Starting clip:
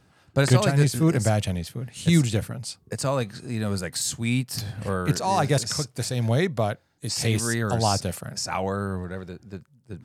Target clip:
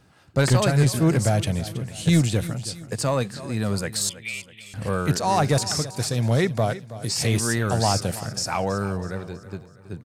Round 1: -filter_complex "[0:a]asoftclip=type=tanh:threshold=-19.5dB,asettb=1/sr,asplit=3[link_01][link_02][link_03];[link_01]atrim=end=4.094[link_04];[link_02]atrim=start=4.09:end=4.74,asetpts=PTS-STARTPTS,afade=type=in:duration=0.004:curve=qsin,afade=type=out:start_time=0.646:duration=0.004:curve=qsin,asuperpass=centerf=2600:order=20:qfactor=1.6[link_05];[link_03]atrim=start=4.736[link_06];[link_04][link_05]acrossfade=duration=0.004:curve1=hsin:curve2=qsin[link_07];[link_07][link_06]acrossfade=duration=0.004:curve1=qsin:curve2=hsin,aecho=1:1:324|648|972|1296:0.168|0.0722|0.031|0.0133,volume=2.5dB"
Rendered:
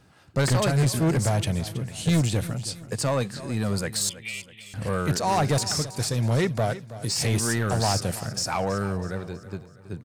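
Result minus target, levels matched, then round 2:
soft clipping: distortion +7 dB
-filter_complex "[0:a]asoftclip=type=tanh:threshold=-12.5dB,asettb=1/sr,asplit=3[link_01][link_02][link_03];[link_01]atrim=end=4.094[link_04];[link_02]atrim=start=4.09:end=4.74,asetpts=PTS-STARTPTS,afade=type=in:duration=0.004:curve=qsin,afade=type=out:start_time=0.646:duration=0.004:curve=qsin,asuperpass=centerf=2600:order=20:qfactor=1.6[link_05];[link_03]atrim=start=4.736[link_06];[link_04][link_05]acrossfade=duration=0.004:curve1=hsin:curve2=qsin[link_07];[link_07][link_06]acrossfade=duration=0.004:curve1=qsin:curve2=hsin,aecho=1:1:324|648|972|1296:0.168|0.0722|0.031|0.0133,volume=2.5dB"

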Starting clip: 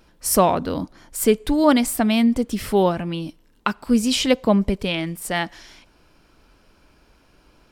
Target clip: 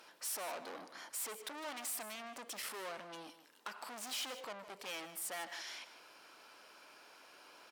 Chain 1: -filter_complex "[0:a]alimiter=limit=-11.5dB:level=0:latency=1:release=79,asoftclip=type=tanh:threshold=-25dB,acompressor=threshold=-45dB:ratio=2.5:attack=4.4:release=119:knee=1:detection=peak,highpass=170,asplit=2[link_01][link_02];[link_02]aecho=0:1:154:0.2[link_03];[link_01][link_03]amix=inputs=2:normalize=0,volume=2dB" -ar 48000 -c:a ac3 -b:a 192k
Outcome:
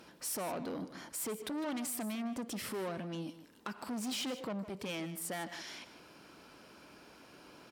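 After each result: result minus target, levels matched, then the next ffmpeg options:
125 Hz band +17.0 dB; soft clipping: distortion −4 dB
-filter_complex "[0:a]alimiter=limit=-11.5dB:level=0:latency=1:release=79,asoftclip=type=tanh:threshold=-25dB,acompressor=threshold=-45dB:ratio=2.5:attack=4.4:release=119:knee=1:detection=peak,highpass=640,asplit=2[link_01][link_02];[link_02]aecho=0:1:154:0.2[link_03];[link_01][link_03]amix=inputs=2:normalize=0,volume=2dB" -ar 48000 -c:a ac3 -b:a 192k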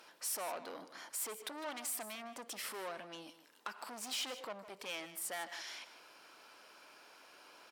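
soft clipping: distortion −4 dB
-filter_complex "[0:a]alimiter=limit=-11.5dB:level=0:latency=1:release=79,asoftclip=type=tanh:threshold=-33dB,acompressor=threshold=-45dB:ratio=2.5:attack=4.4:release=119:knee=1:detection=peak,highpass=640,asplit=2[link_01][link_02];[link_02]aecho=0:1:154:0.2[link_03];[link_01][link_03]amix=inputs=2:normalize=0,volume=2dB" -ar 48000 -c:a ac3 -b:a 192k

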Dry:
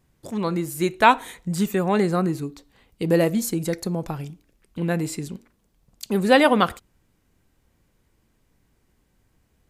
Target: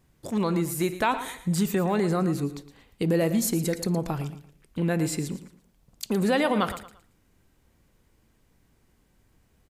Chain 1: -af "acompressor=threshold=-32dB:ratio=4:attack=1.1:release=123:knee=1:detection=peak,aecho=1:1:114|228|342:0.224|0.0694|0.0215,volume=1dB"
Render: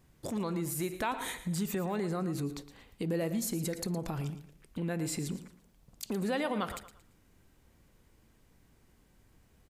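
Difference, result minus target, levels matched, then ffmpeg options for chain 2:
downward compressor: peak gain reduction +9 dB
-af "acompressor=threshold=-20dB:ratio=4:attack=1.1:release=123:knee=1:detection=peak,aecho=1:1:114|228|342:0.224|0.0694|0.0215,volume=1dB"

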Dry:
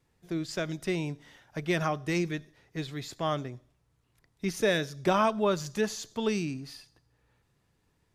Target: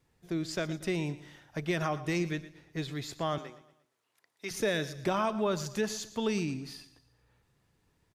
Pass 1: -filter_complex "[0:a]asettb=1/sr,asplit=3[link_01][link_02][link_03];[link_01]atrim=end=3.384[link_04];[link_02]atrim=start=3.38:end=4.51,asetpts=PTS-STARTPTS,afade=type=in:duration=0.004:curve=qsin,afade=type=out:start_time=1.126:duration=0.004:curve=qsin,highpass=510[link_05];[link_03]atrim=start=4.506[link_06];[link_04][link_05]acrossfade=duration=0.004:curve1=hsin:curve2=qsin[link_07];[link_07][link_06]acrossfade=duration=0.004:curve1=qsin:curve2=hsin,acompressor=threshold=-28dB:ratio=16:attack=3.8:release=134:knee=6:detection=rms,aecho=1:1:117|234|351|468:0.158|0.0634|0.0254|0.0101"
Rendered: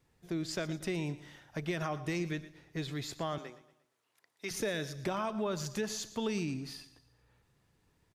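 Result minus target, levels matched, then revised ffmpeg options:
downward compressor: peak gain reduction +5.5 dB
-filter_complex "[0:a]asettb=1/sr,asplit=3[link_01][link_02][link_03];[link_01]atrim=end=3.384[link_04];[link_02]atrim=start=3.38:end=4.51,asetpts=PTS-STARTPTS,afade=type=in:duration=0.004:curve=qsin,afade=type=out:start_time=1.126:duration=0.004:curve=qsin,highpass=510[link_05];[link_03]atrim=start=4.506[link_06];[link_04][link_05]acrossfade=duration=0.004:curve1=hsin:curve2=qsin[link_07];[link_07][link_06]acrossfade=duration=0.004:curve1=qsin:curve2=hsin,acompressor=threshold=-22dB:ratio=16:attack=3.8:release=134:knee=6:detection=rms,aecho=1:1:117|234|351|468:0.158|0.0634|0.0254|0.0101"

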